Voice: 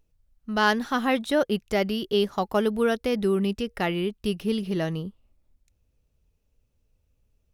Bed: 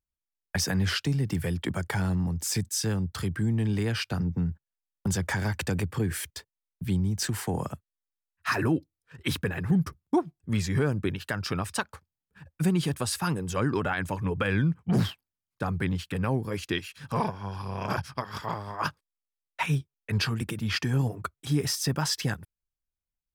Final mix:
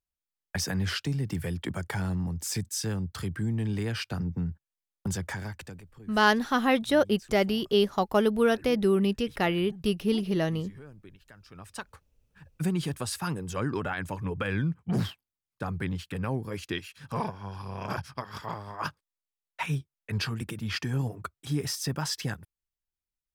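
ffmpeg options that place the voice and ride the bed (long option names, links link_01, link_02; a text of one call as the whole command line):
ffmpeg -i stem1.wav -i stem2.wav -filter_complex "[0:a]adelay=5600,volume=0dB[link_01];[1:a]volume=15.5dB,afade=type=out:start_time=5.05:duration=0.79:silence=0.112202,afade=type=in:start_time=11.51:duration=0.63:silence=0.11885[link_02];[link_01][link_02]amix=inputs=2:normalize=0" out.wav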